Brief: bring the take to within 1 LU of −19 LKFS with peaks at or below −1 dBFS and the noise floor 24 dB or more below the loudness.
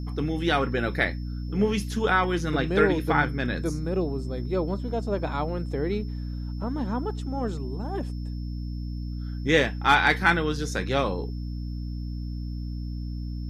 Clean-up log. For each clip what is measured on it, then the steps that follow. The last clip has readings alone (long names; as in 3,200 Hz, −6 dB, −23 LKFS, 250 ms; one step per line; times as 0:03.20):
mains hum 60 Hz; hum harmonics up to 300 Hz; level of the hum −30 dBFS; interfering tone 5,300 Hz; level of the tone −54 dBFS; integrated loudness −27.0 LKFS; sample peak −6.5 dBFS; target loudness −19.0 LKFS
→ mains-hum notches 60/120/180/240/300 Hz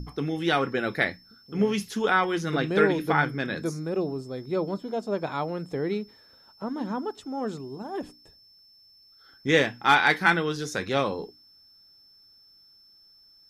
mains hum none found; interfering tone 5,300 Hz; level of the tone −54 dBFS
→ notch filter 5,300 Hz, Q 30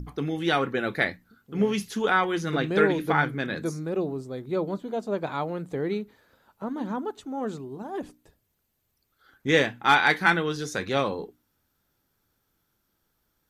interfering tone none found; integrated loudness −26.5 LKFS; sample peak −6.5 dBFS; target loudness −19.0 LKFS
→ level +7.5 dB
brickwall limiter −1 dBFS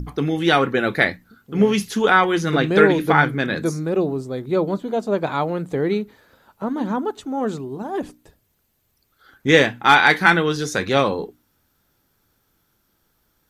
integrated loudness −19.5 LKFS; sample peak −1.0 dBFS; background noise floor −67 dBFS